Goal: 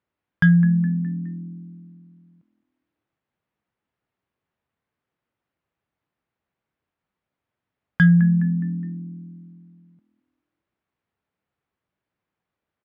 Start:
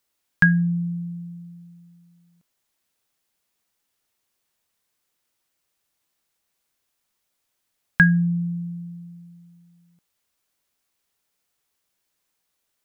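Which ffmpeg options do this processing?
-filter_complex "[0:a]asplit=5[s0][s1][s2][s3][s4];[s1]adelay=208,afreqshift=41,volume=0.126[s5];[s2]adelay=416,afreqshift=82,volume=0.0569[s6];[s3]adelay=624,afreqshift=123,volume=0.0254[s7];[s4]adelay=832,afreqshift=164,volume=0.0115[s8];[s0][s5][s6][s7][s8]amix=inputs=5:normalize=0,asoftclip=type=tanh:threshold=0.473,highpass=100,lowpass=2300,acontrast=56,aemphasis=mode=reproduction:type=bsi,volume=0.447"

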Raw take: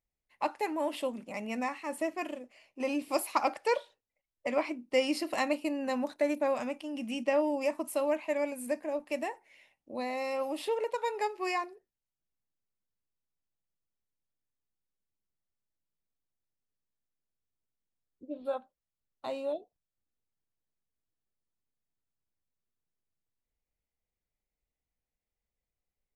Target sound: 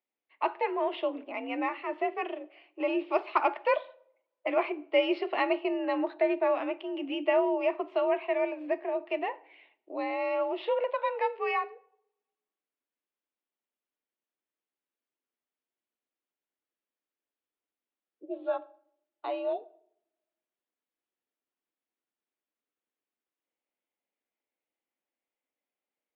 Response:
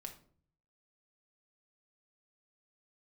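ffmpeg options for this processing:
-filter_complex "[0:a]asplit=2[s0][s1];[1:a]atrim=start_sample=2205,asetrate=28224,aresample=44100[s2];[s1][s2]afir=irnorm=-1:irlink=0,volume=0.316[s3];[s0][s3]amix=inputs=2:normalize=0,highpass=f=200:t=q:w=0.5412,highpass=f=200:t=q:w=1.307,lowpass=f=3400:t=q:w=0.5176,lowpass=f=3400:t=q:w=0.7071,lowpass=f=3400:t=q:w=1.932,afreqshift=54,volume=1.12"

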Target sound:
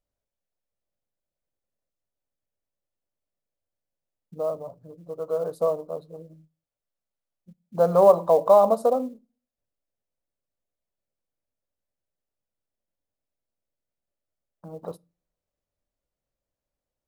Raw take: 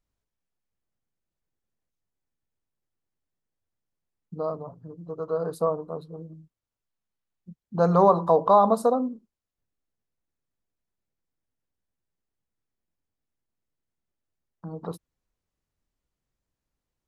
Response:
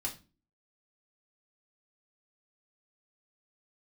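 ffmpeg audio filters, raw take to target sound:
-filter_complex "[0:a]equalizer=f=580:t=o:w=0.58:g=12,acrusher=bits=8:mode=log:mix=0:aa=0.000001,asplit=2[s0][s1];[1:a]atrim=start_sample=2205[s2];[s1][s2]afir=irnorm=-1:irlink=0,volume=0.0944[s3];[s0][s3]amix=inputs=2:normalize=0,volume=0.501"

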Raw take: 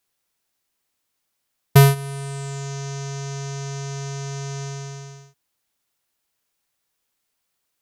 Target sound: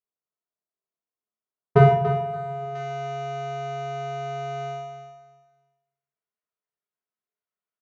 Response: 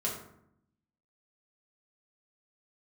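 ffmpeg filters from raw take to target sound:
-filter_complex "[0:a]highpass=f=330:p=1,agate=range=0.141:threshold=0.0178:ratio=16:detection=peak,asetnsamples=n=441:p=0,asendcmd='2.75 lowpass f 2000',lowpass=1100,aecho=1:1:287|574|861:0.316|0.0727|0.0167[s0];[1:a]atrim=start_sample=2205[s1];[s0][s1]afir=irnorm=-1:irlink=0,volume=0.891"

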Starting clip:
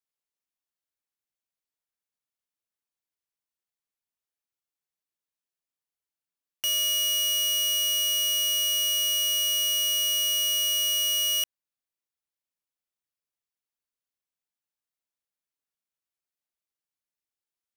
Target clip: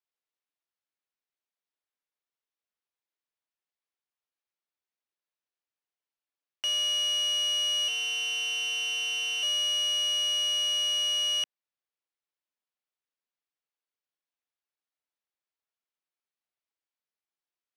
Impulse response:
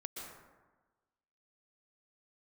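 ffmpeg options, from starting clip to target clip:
-filter_complex "[0:a]asettb=1/sr,asplit=3[s0][s1][s2];[s0]atrim=end=7.884[s3];[s1]atrim=start=7.88:end=9.43,asetpts=PTS-STARTPTS,afade=t=in:d=0.004:c=qsin,afade=t=out:st=1.546:d=0.004:c=qsin,aeval=exprs='val(0)*sin(2*PI*130*n/s)':c=same[s4];[s2]atrim=start=9.426[s5];[s3][s4]acrossfade=d=0.004:c1=hsin:c2=qsin[s6];[s6][s5]acrossfade=d=0.004:c1=qsin:c2=hsin,highpass=290,lowpass=4400"

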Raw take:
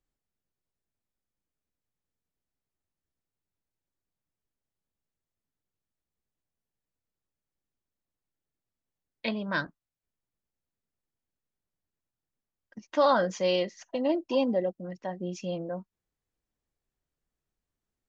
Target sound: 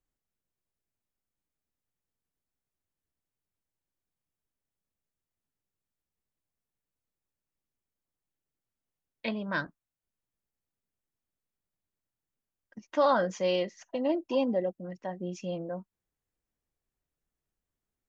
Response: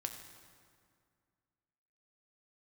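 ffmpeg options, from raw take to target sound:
-af "equalizer=f=4300:t=o:w=0.79:g=-4,volume=0.841"

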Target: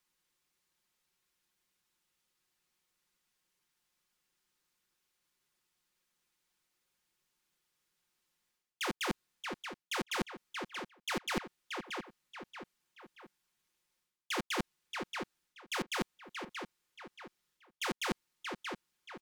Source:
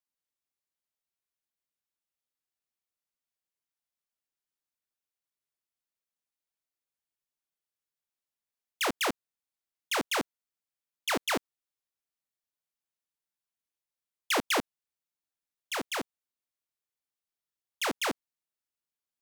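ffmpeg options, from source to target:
-filter_complex "[0:a]highshelf=f=9800:g=-8,aecho=1:1:5.6:0.46,asplit=2[s0][s1];[s1]alimiter=level_in=1.26:limit=0.0631:level=0:latency=1,volume=0.794,volume=0.891[s2];[s0][s2]amix=inputs=2:normalize=0,equalizer=f=640:w=4:g=-10.5,asplit=2[s3][s4];[s4]adelay=629,lowpass=f=3400:p=1,volume=0.0944,asplit=2[s5][s6];[s6]adelay=629,lowpass=f=3400:p=1,volume=0.45,asplit=2[s7][s8];[s8]adelay=629,lowpass=f=3400:p=1,volume=0.45[s9];[s3][s5][s7][s9]amix=inputs=4:normalize=0,areverse,acompressor=threshold=0.00891:ratio=10,areverse,volume=2.37"

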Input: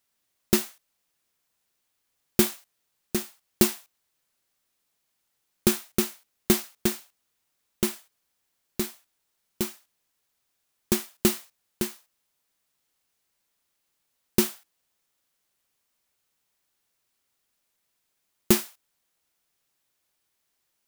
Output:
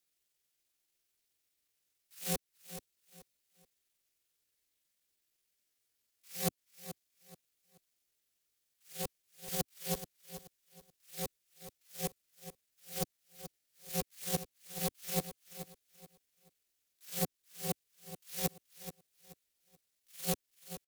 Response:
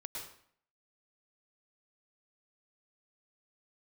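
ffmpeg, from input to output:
-filter_complex "[0:a]areverse,highpass=73,equalizer=f=590:t=o:w=1.2:g=-13.5,acompressor=threshold=0.0562:ratio=4,aeval=exprs='clip(val(0),-1,0.0188)':c=same,asetrate=70004,aresample=44100,atempo=0.629961,aeval=exprs='val(0)*sin(2*PI*180*n/s)':c=same,asplit=2[s0][s1];[s1]aecho=0:1:430|860|1290:0.251|0.0728|0.0211[s2];[s0][s2]amix=inputs=2:normalize=0,volume=1.19"

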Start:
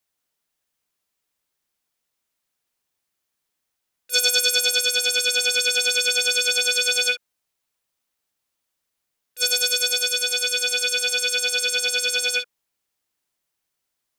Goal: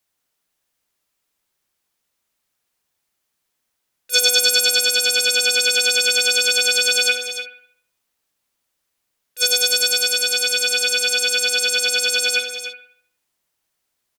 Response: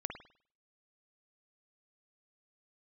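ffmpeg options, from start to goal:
-filter_complex "[0:a]aecho=1:1:299:0.316,asplit=2[s0][s1];[1:a]atrim=start_sample=2205,asetrate=36603,aresample=44100[s2];[s1][s2]afir=irnorm=-1:irlink=0,volume=0.841[s3];[s0][s3]amix=inputs=2:normalize=0,volume=0.891"

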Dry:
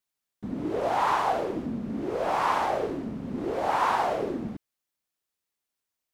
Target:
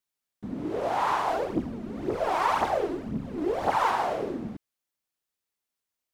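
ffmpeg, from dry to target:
-filter_complex "[0:a]asplit=3[s0][s1][s2];[s0]afade=t=out:st=1.27:d=0.02[s3];[s1]aphaser=in_gain=1:out_gain=1:delay=3.3:decay=0.6:speed=1.9:type=triangular,afade=t=in:st=1.27:d=0.02,afade=t=out:st=3.9:d=0.02[s4];[s2]afade=t=in:st=3.9:d=0.02[s5];[s3][s4][s5]amix=inputs=3:normalize=0,volume=0.841"

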